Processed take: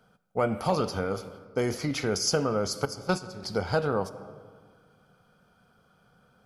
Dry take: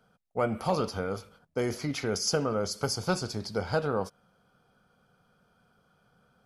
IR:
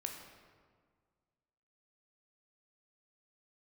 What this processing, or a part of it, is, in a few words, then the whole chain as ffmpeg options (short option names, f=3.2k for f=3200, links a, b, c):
ducked reverb: -filter_complex "[0:a]asettb=1/sr,asplit=3[a][b][c];[a]atrim=end=2.854[d];[b]atrim=start=2.85:end=3.43,asetpts=PTS-STARTPTS,afade=t=in:d=0.004:c=qsin,afade=t=out:st=0.576:d=0.004:c=qsin,agate=range=-13dB:threshold=-28dB:ratio=16:detection=peak[e];[c]atrim=start=3.426[f];[d][e]acrossfade=d=0.004:c1=hsin:c2=qsin[g];[g][f]acrossfade=d=0.004:c1=qsin:c2=hsin,asplit=3[h][i][j];[1:a]atrim=start_sample=2205[k];[i][k]afir=irnorm=-1:irlink=0[l];[j]apad=whole_len=284464[m];[l][m]sidechaincompress=threshold=-30dB:ratio=8:attack=37:release=390,volume=-4dB[n];[h][n]amix=inputs=2:normalize=0"